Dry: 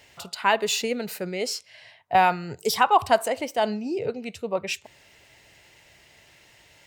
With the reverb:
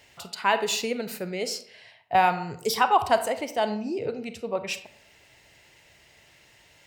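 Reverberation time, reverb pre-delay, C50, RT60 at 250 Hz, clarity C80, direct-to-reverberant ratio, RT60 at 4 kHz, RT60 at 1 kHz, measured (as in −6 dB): 0.65 s, 31 ms, 12.0 dB, 0.65 s, 15.5 dB, 10.5 dB, 0.35 s, 0.60 s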